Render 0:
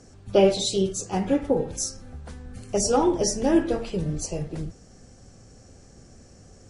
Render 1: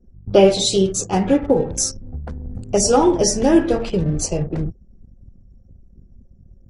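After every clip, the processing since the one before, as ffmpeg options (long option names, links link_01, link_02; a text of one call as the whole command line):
ffmpeg -i in.wav -filter_complex "[0:a]anlmdn=0.631,asplit=2[link_01][link_02];[link_02]acompressor=threshold=-30dB:ratio=6,volume=-0.5dB[link_03];[link_01][link_03]amix=inputs=2:normalize=0,volume=4.5dB" out.wav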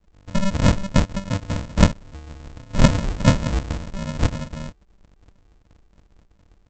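ffmpeg -i in.wav -af "aexciter=amount=11.1:drive=7.3:freq=5600,aresample=16000,acrusher=samples=41:mix=1:aa=0.000001,aresample=44100,volume=-8.5dB" out.wav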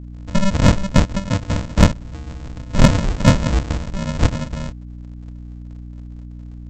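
ffmpeg -i in.wav -af "asoftclip=type=tanh:threshold=-5dB,aeval=exprs='val(0)+0.0141*(sin(2*PI*60*n/s)+sin(2*PI*2*60*n/s)/2+sin(2*PI*3*60*n/s)/3+sin(2*PI*4*60*n/s)/4+sin(2*PI*5*60*n/s)/5)':channel_layout=same,volume=4.5dB" out.wav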